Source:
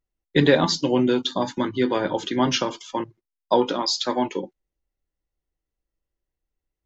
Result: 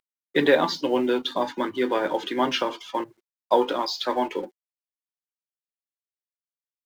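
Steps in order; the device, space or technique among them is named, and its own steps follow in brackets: phone line with mismatched companding (band-pass 340–3300 Hz; companding laws mixed up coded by mu)

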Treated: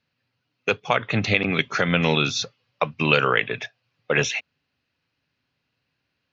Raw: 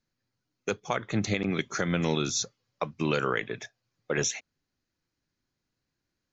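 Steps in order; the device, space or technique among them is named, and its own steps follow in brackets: guitar cabinet (cabinet simulation 94–4600 Hz, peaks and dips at 200 Hz -6 dB, 340 Hz -9 dB, 2.7 kHz +9 dB); trim +8.5 dB

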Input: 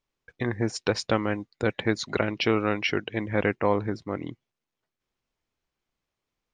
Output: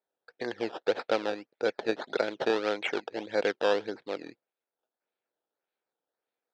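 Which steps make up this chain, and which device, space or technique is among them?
circuit-bent sampling toy (decimation with a swept rate 14×, swing 100% 1.7 Hz; cabinet simulation 470–4200 Hz, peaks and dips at 480 Hz +4 dB, 1.1 kHz -10 dB, 2 kHz -6 dB, 2.9 kHz -6 dB)

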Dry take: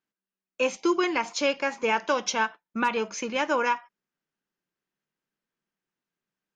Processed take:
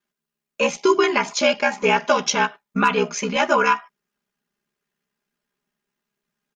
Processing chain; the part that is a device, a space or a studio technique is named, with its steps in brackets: ring-modulated robot voice (ring modulator 33 Hz; comb 4.9 ms, depth 92%); trim +7.5 dB

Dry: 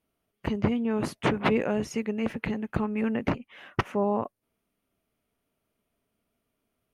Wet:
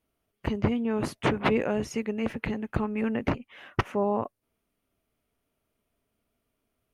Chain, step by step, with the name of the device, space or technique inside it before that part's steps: low shelf boost with a cut just above (bass shelf 110 Hz +4.5 dB; peaking EQ 180 Hz -3.5 dB 0.62 oct)

